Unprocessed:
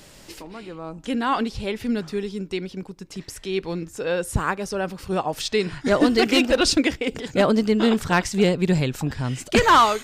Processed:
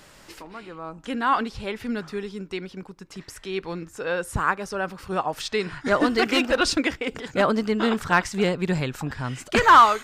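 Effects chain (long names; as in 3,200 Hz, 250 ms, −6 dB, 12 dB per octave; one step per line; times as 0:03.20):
parametric band 1,300 Hz +8.5 dB 1.5 octaves
level −5 dB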